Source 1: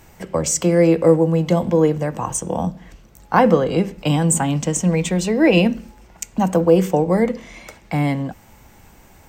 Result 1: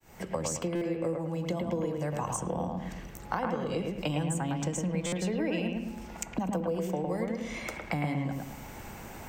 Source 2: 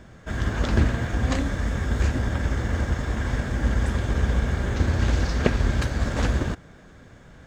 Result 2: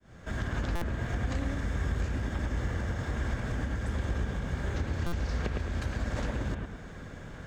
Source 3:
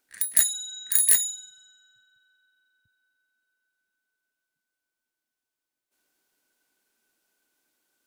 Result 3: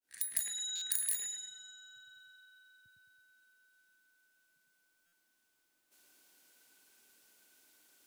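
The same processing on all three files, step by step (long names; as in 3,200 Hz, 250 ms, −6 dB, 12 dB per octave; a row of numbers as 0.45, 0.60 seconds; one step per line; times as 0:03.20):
fade in at the beginning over 0.52 s
downward compressor 12 to 1, threshold −27 dBFS
on a send: bucket-brigade delay 108 ms, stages 2,048, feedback 38%, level −3 dB
on the sum: buffer that repeats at 0:00.75/0:05.06, samples 256, times 10
multiband upward and downward compressor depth 40%
level −2.5 dB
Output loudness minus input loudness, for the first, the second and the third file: −15.0, −8.5, −14.0 LU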